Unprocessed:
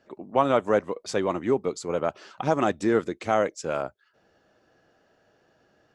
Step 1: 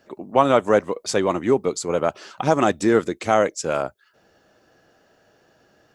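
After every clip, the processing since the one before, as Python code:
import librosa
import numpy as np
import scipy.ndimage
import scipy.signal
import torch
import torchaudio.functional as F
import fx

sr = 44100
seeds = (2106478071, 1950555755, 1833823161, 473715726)

y = fx.high_shelf(x, sr, hz=7000.0, db=9.5)
y = y * librosa.db_to_amplitude(5.0)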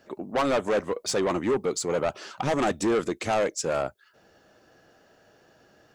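y = 10.0 ** (-19.5 / 20.0) * np.tanh(x / 10.0 ** (-19.5 / 20.0))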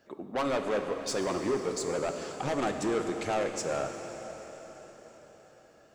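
y = fx.rev_plate(x, sr, seeds[0], rt60_s=4.9, hf_ratio=0.95, predelay_ms=0, drr_db=4.5)
y = y * librosa.db_to_amplitude(-6.0)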